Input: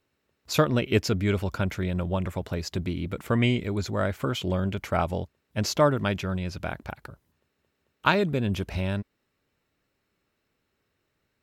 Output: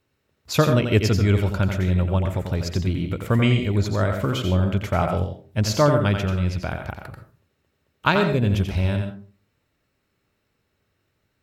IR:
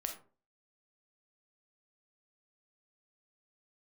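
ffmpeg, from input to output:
-filter_complex "[0:a]equalizer=frequency=98:width_type=o:width=1.3:gain=6,asplit=2[link_01][link_02];[1:a]atrim=start_sample=2205,adelay=88[link_03];[link_02][link_03]afir=irnorm=-1:irlink=0,volume=-4.5dB[link_04];[link_01][link_04]amix=inputs=2:normalize=0,volume=2dB"

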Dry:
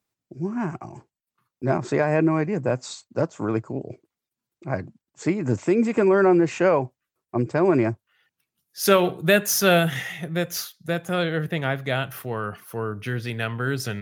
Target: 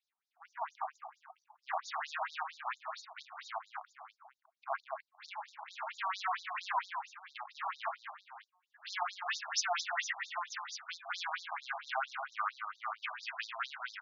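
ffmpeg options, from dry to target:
ffmpeg -i in.wav -af "highshelf=frequency=2100:gain=-10.5,bandreject=frequency=181.8:width_type=h:width=4,bandreject=frequency=363.6:width_type=h:width=4,bandreject=frequency=545.4:width_type=h:width=4,bandreject=frequency=727.2:width_type=h:width=4,bandreject=frequency=909:width_type=h:width=4,bandreject=frequency=1090.8:width_type=h:width=4,bandreject=frequency=1272.6:width_type=h:width=4,alimiter=limit=-14dB:level=0:latency=1:release=22,aresample=16000,asoftclip=type=tanh:threshold=-27.5dB,aresample=44100,aecho=1:1:135|204|549:0.15|0.473|0.224,afftfilt=real='re*between(b*sr/1024,880*pow(5200/880,0.5+0.5*sin(2*PI*4.4*pts/sr))/1.41,880*pow(5200/880,0.5+0.5*sin(2*PI*4.4*pts/sr))*1.41)':imag='im*between(b*sr/1024,880*pow(5200/880,0.5+0.5*sin(2*PI*4.4*pts/sr))/1.41,880*pow(5200/880,0.5+0.5*sin(2*PI*4.4*pts/sr))*1.41)':win_size=1024:overlap=0.75,volume=6.5dB" out.wav

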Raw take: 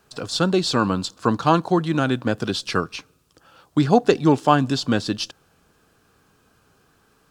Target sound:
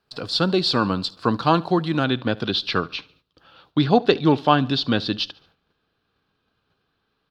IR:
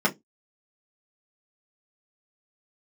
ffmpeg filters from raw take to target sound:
-af "agate=range=-12dB:threshold=-57dB:ratio=16:detection=peak,asetnsamples=nb_out_samples=441:pad=0,asendcmd='2.04 highshelf g -13',highshelf=frequency=5500:width_type=q:width=3:gain=-6.5,aecho=1:1:72|144|216:0.0708|0.0304|0.0131,volume=-1dB"

